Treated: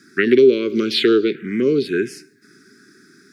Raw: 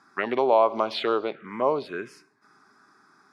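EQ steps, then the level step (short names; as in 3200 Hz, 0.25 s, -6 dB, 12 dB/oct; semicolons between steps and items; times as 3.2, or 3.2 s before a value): elliptic band-stop 400–1600 Hz, stop band 60 dB; bell 260 Hz +7.5 dB 2.9 oct; high shelf 5000 Hz +9.5 dB; +9.0 dB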